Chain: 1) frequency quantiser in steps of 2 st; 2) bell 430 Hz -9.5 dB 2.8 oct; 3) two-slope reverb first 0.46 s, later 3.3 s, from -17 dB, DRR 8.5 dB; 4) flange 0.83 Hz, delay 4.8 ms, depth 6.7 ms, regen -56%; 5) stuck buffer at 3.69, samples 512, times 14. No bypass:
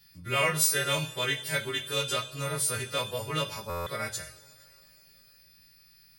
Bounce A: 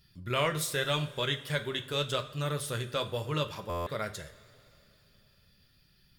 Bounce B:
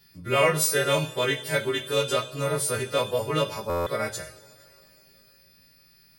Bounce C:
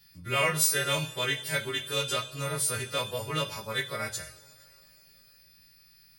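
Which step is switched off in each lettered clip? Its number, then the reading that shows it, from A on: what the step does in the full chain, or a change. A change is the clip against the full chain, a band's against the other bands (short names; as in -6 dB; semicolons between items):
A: 1, 8 kHz band -10.0 dB; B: 2, 500 Hz band +6.0 dB; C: 5, momentary loudness spread change -1 LU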